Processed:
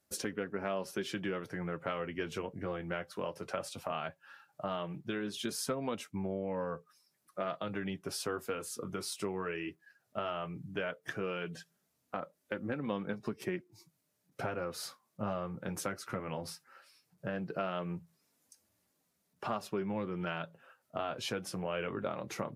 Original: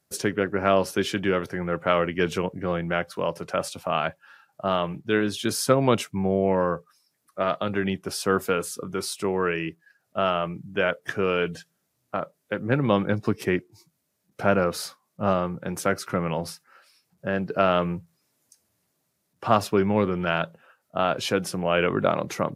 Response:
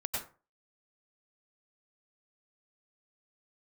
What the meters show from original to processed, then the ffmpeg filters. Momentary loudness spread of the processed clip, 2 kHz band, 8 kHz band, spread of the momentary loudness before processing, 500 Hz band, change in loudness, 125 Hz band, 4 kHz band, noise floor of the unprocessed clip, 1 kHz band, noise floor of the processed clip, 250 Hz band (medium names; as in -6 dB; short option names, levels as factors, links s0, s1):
7 LU, -12.5 dB, -9.0 dB, 10 LU, -13.5 dB, -13.0 dB, -13.0 dB, -11.0 dB, -75 dBFS, -13.5 dB, -79 dBFS, -12.5 dB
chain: -af "acompressor=threshold=0.0251:ratio=3,flanger=delay=3.3:depth=6.6:regen=-42:speed=0.16:shape=triangular"